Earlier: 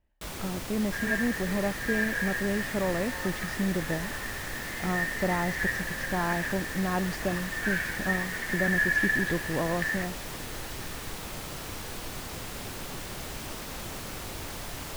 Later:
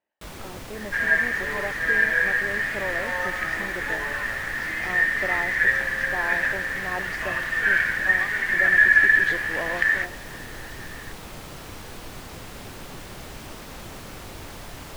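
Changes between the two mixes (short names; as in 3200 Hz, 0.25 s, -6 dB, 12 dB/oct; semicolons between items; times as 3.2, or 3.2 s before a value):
speech: add HPF 420 Hz 12 dB/oct; second sound +11.0 dB; master: add high shelf 4100 Hz -5 dB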